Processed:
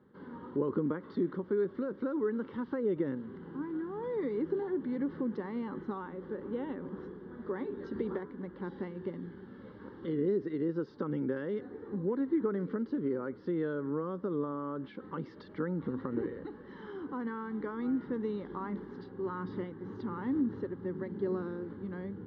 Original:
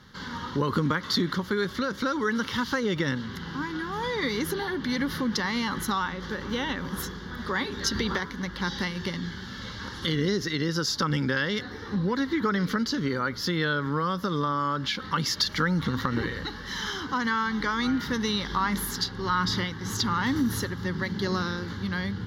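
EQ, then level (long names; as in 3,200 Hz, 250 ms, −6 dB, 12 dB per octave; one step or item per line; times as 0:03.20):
resonant band-pass 380 Hz, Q 1.8
high-frequency loss of the air 290 metres
0.0 dB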